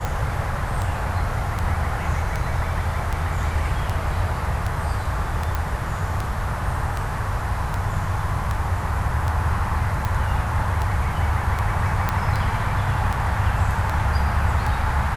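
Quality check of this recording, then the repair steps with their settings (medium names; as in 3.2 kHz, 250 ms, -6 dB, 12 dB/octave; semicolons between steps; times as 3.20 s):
tick 78 rpm -12 dBFS
5.55 s: pop
12.09 s: pop -8 dBFS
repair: de-click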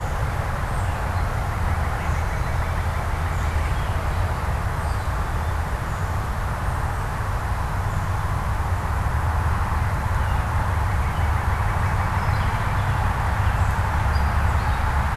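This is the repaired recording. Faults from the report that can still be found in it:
nothing left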